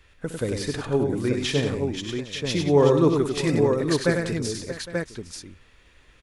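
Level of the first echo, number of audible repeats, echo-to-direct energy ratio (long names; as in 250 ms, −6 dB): −13.0 dB, 6, −1.0 dB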